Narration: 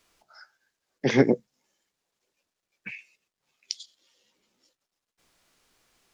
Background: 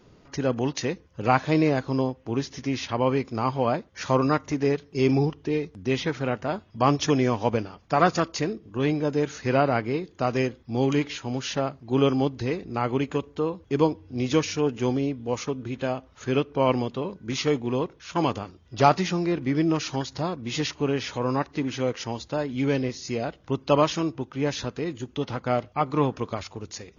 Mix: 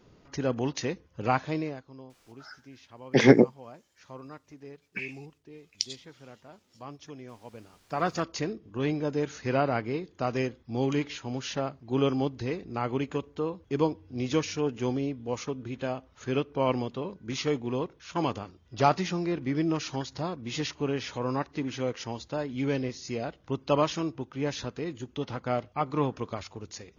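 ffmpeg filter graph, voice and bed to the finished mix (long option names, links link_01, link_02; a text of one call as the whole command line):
ffmpeg -i stem1.wav -i stem2.wav -filter_complex "[0:a]adelay=2100,volume=3dB[link_01];[1:a]volume=14.5dB,afade=type=out:start_time=1.21:duration=0.63:silence=0.112202,afade=type=in:start_time=7.54:duration=0.82:silence=0.125893[link_02];[link_01][link_02]amix=inputs=2:normalize=0" out.wav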